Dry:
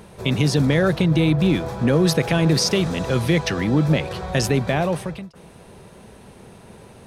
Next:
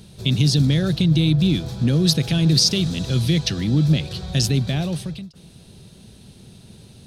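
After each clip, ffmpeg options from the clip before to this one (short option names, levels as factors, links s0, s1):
-af "equalizer=f=125:t=o:w=1:g=4,equalizer=f=500:t=o:w=1:g=-8,equalizer=f=1000:t=o:w=1:g=-12,equalizer=f=2000:t=o:w=1:g=-8,equalizer=f=4000:t=o:w=1:g=9"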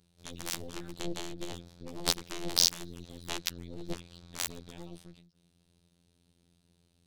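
-af "afftfilt=real='hypot(re,im)*cos(PI*b)':imag='0':win_size=2048:overlap=0.75,aeval=exprs='1.19*(cos(1*acos(clip(val(0)/1.19,-1,1)))-cos(1*PI/2))+0.188*(cos(7*acos(clip(val(0)/1.19,-1,1)))-cos(7*PI/2))+0.075*(cos(8*acos(clip(val(0)/1.19,-1,1)))-cos(8*PI/2))':c=same,volume=0.708"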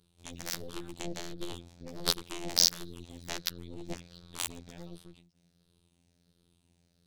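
-af "afftfilt=real='re*pow(10,6/40*sin(2*PI*(0.62*log(max(b,1)*sr/1024/100)/log(2)-(-1.4)*(pts-256)/sr)))':imag='im*pow(10,6/40*sin(2*PI*(0.62*log(max(b,1)*sr/1024/100)/log(2)-(-1.4)*(pts-256)/sr)))':win_size=1024:overlap=0.75,volume=0.891"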